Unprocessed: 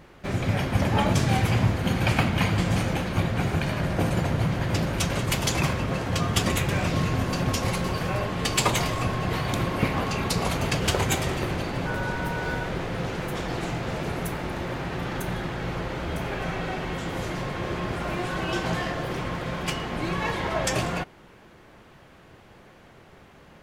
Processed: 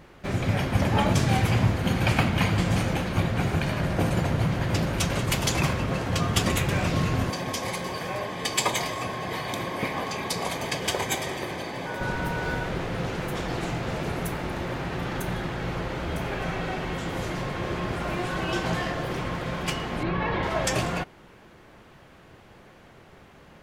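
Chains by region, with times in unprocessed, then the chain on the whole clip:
7.3–12.01 low shelf 320 Hz -7.5 dB + notch comb 1400 Hz
20.03–20.43 air absorption 290 m + fast leveller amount 100%
whole clip: dry

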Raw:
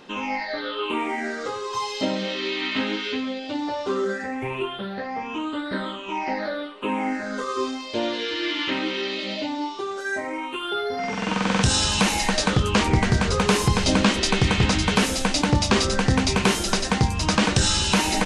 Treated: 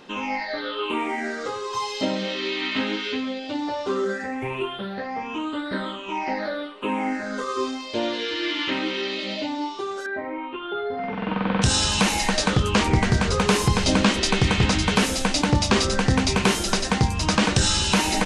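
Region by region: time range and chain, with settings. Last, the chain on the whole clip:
10.06–11.62 steep low-pass 4000 Hz + high shelf 2300 Hz -11.5 dB
whole clip: dry

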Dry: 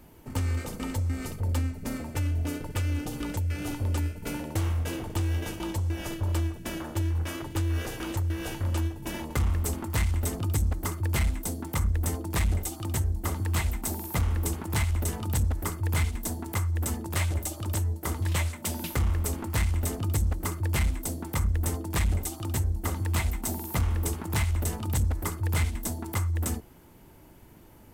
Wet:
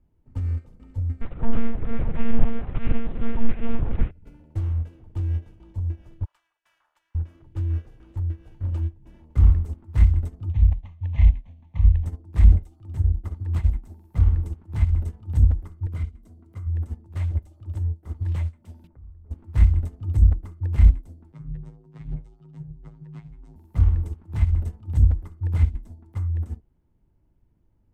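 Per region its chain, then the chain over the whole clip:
1.21–4.11 overdrive pedal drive 37 dB, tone 1800 Hz, clips at -20 dBFS + echo 0.431 s -11 dB + monotone LPC vocoder at 8 kHz 230 Hz
6.25–7.15 HPF 960 Hz 24 dB/oct + short-mantissa float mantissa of 2-bit
10.5–12.05 CVSD 32 kbps + high shelf 2300 Hz +9 dB + fixed phaser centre 1400 Hz, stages 6
15.86–16.67 upward compressor, threshold -30 dBFS + notch comb 870 Hz
18.87–19.31 Gaussian blur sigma 5.6 samples + compressor 10:1, threshold -34 dBFS
21.32–23.56 LPF 5900 Hz + robotiser 111 Hz + frequency shift +42 Hz
whole clip: RIAA curve playback; upward expander 2.5:1, over -21 dBFS

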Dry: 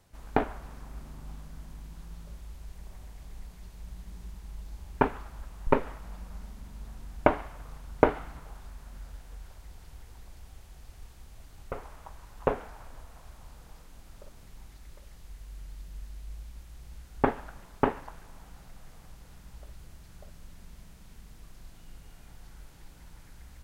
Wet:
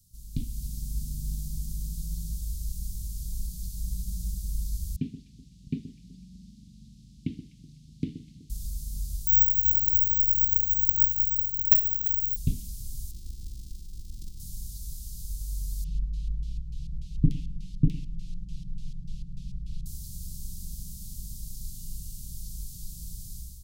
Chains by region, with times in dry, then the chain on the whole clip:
4.96–8.5 BPF 220–2300 Hz + echo with dull and thin repeats by turns 0.125 s, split 890 Hz, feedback 54%, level -11.5 dB
9.27–12.36 careless resampling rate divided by 2×, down filtered, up zero stuff + notch 5300 Hz, Q 6
13.11–14.4 sample sorter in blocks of 128 samples + LPF 3300 Hz 6 dB/oct
15.84–19.86 comb 6.3 ms, depth 84% + LFO low-pass square 3.4 Hz 770–2600 Hz + echo 0.108 s -18.5 dB
whole clip: inverse Chebyshev band-stop 570–1500 Hz, stop band 70 dB; high shelf 7000 Hz +11.5 dB; AGC gain up to 11 dB

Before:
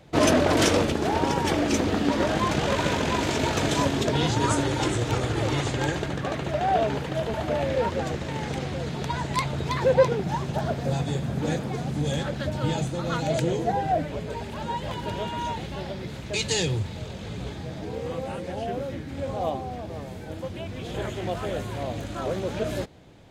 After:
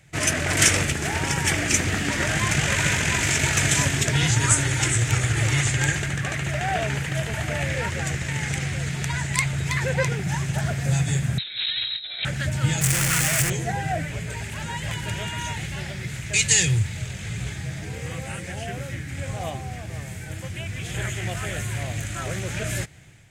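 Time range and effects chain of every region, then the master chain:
11.38–12.25 negative-ratio compressor -31 dBFS, ratio -0.5 + inverted band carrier 4000 Hz
12.81–13.5 infinite clipping + notch 3900 Hz, Q 23
whole clip: ten-band EQ 125 Hz +7 dB, 250 Hz -10 dB, 500 Hz -11 dB, 1000 Hz -11 dB, 2000 Hz +7 dB, 4000 Hz -9 dB, 8000 Hz +9 dB; AGC gain up to 6 dB; low shelf 260 Hz -6.5 dB; gain +2 dB

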